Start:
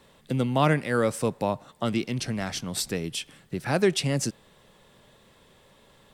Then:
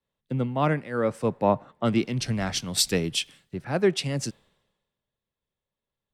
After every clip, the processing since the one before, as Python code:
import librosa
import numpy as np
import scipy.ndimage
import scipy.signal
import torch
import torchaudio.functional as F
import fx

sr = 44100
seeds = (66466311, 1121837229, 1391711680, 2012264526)

y = fx.high_shelf(x, sr, hz=5900.0, db=-9.5)
y = fx.rider(y, sr, range_db=4, speed_s=0.5)
y = fx.band_widen(y, sr, depth_pct=100)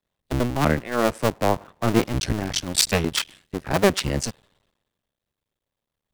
y = fx.cycle_switch(x, sr, every=2, mode='muted')
y = y * librosa.db_to_amplitude(6.5)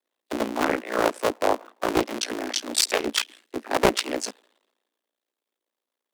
y = scipy.signal.sosfilt(scipy.signal.butter(16, 250.0, 'highpass', fs=sr, output='sos'), x)
y = y * np.sin(2.0 * np.pi * 29.0 * np.arange(len(y)) / sr)
y = fx.doppler_dist(y, sr, depth_ms=0.56)
y = y * librosa.db_to_amplitude(2.5)